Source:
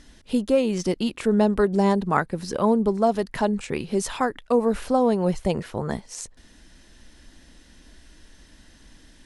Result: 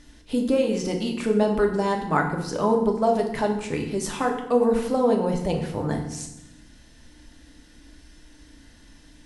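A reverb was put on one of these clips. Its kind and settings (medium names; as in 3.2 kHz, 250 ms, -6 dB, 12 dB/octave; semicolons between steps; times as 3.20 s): FDN reverb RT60 0.87 s, low-frequency decay 1.55×, high-frequency decay 0.8×, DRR 1.5 dB; trim -2.5 dB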